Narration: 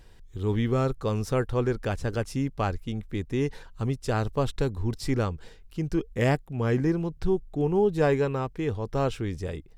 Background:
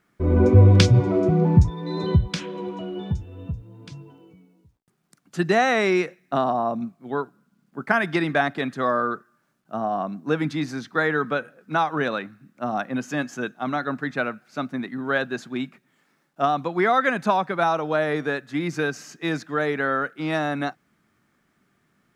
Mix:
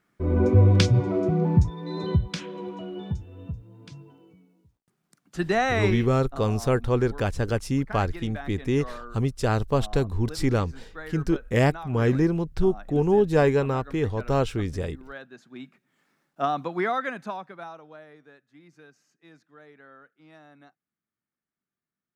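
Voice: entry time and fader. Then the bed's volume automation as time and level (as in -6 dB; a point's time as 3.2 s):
5.35 s, +3.0 dB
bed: 5.86 s -4 dB
6.07 s -17.5 dB
15.35 s -17.5 dB
16.02 s -4 dB
16.75 s -4 dB
18.18 s -27 dB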